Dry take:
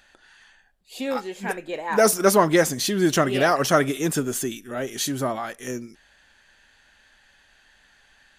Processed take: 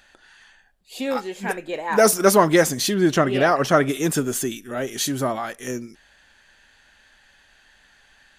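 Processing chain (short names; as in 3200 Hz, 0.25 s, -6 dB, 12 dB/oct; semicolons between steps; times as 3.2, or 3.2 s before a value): 2.94–3.89 high shelf 5000 Hz -11.5 dB; gain +2 dB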